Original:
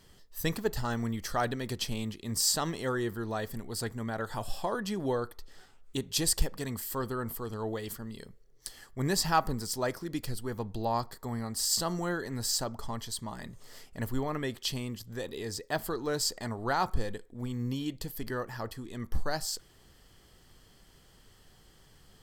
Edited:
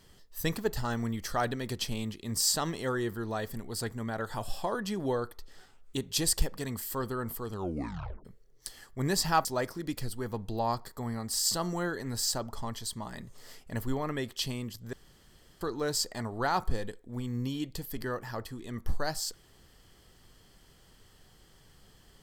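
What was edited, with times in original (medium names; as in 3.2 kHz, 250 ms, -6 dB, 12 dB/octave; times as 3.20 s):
7.53 s: tape stop 0.72 s
9.45–9.71 s: delete
15.19–15.87 s: room tone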